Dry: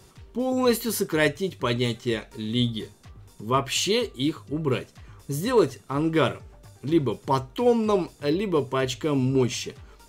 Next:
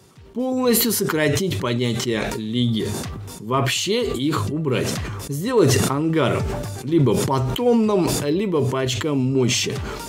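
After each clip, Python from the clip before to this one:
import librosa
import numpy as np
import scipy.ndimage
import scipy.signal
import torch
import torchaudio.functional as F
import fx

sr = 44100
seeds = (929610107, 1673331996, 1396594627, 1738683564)

y = scipy.signal.sosfilt(scipy.signal.butter(2, 110.0, 'highpass', fs=sr, output='sos'), x)
y = fx.low_shelf(y, sr, hz=360.0, db=4.5)
y = fx.sustainer(y, sr, db_per_s=25.0)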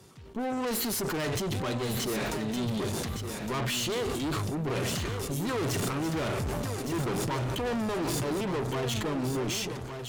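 y = fx.fade_out_tail(x, sr, length_s=0.96)
y = fx.tube_stage(y, sr, drive_db=29.0, bias=0.65)
y = fx.echo_feedback(y, sr, ms=1163, feedback_pct=17, wet_db=-8.0)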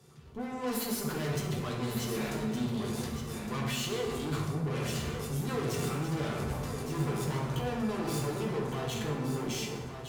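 y = fx.rev_fdn(x, sr, rt60_s=1.3, lf_ratio=1.1, hf_ratio=0.6, size_ms=40.0, drr_db=-2.0)
y = F.gain(torch.from_numpy(y), -8.0).numpy()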